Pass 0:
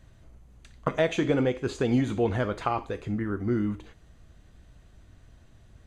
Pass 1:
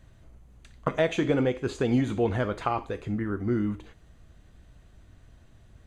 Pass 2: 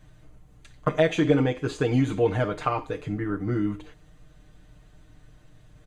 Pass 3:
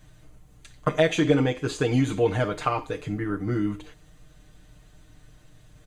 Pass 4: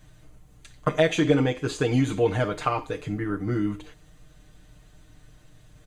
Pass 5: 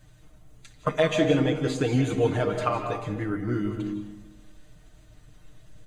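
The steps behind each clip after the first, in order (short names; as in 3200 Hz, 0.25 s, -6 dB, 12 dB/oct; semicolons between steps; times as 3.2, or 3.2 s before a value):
bell 5400 Hz -2 dB
comb 6.6 ms, depth 86%
high shelf 3500 Hz +7.5 dB
nothing audible
bin magnitudes rounded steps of 15 dB; digital reverb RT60 1 s, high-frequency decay 0.3×, pre-delay 0.12 s, DRR 6 dB; gain -1.5 dB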